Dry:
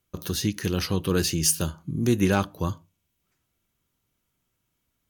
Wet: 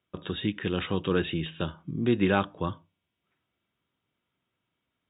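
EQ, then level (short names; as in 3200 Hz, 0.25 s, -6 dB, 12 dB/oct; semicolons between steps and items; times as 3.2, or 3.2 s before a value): HPF 59 Hz; brick-wall FIR low-pass 3800 Hz; low shelf 120 Hz -11 dB; 0.0 dB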